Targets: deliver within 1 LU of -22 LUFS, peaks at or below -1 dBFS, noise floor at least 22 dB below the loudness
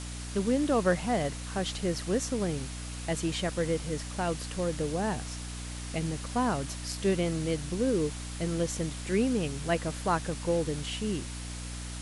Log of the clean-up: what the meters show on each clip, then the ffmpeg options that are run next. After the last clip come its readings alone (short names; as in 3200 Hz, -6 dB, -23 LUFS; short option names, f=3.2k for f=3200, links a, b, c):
hum 60 Hz; harmonics up to 300 Hz; hum level -37 dBFS; noise floor -39 dBFS; noise floor target -53 dBFS; loudness -31.0 LUFS; peak -13.5 dBFS; loudness target -22.0 LUFS
-> -af "bandreject=f=60:t=h:w=4,bandreject=f=120:t=h:w=4,bandreject=f=180:t=h:w=4,bandreject=f=240:t=h:w=4,bandreject=f=300:t=h:w=4"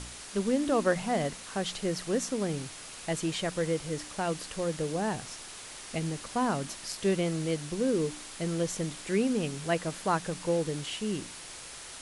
hum none; noise floor -45 dBFS; noise floor target -54 dBFS
-> -af "afftdn=nr=9:nf=-45"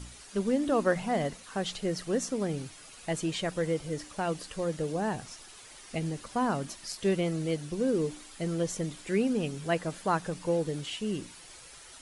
noise floor -50 dBFS; noise floor target -54 dBFS
-> -af "afftdn=nr=6:nf=-50"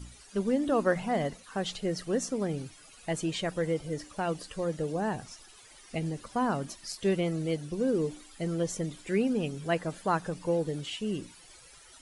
noise floor -54 dBFS; loudness -31.5 LUFS; peak -15.0 dBFS; loudness target -22.0 LUFS
-> -af "volume=9.5dB"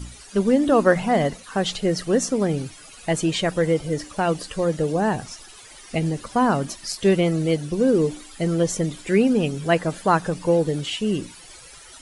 loudness -22.0 LUFS; peak -5.5 dBFS; noise floor -45 dBFS